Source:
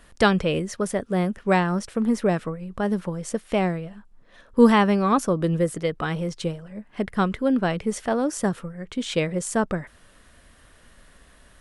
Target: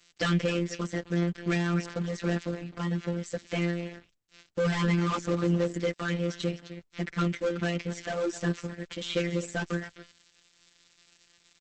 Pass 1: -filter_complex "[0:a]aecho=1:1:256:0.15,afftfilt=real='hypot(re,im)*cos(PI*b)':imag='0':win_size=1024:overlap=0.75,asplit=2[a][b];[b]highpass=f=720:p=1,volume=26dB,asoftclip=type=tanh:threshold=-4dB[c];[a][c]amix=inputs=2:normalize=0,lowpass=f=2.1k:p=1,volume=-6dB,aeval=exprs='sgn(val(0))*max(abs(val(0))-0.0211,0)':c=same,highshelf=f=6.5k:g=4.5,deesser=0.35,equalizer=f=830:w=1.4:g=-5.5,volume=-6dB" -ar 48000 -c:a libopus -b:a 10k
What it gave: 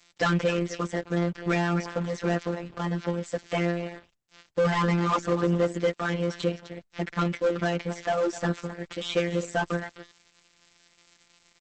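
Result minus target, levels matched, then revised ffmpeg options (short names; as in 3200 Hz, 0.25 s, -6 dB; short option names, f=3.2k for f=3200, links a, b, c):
1000 Hz band +4.5 dB
-filter_complex "[0:a]aecho=1:1:256:0.15,afftfilt=real='hypot(re,im)*cos(PI*b)':imag='0':win_size=1024:overlap=0.75,asplit=2[a][b];[b]highpass=f=720:p=1,volume=26dB,asoftclip=type=tanh:threshold=-4dB[c];[a][c]amix=inputs=2:normalize=0,lowpass=f=2.1k:p=1,volume=-6dB,aeval=exprs='sgn(val(0))*max(abs(val(0))-0.0211,0)':c=same,highshelf=f=6.5k:g=4.5,deesser=0.35,equalizer=f=830:w=1.4:g=-17,volume=-6dB" -ar 48000 -c:a libopus -b:a 10k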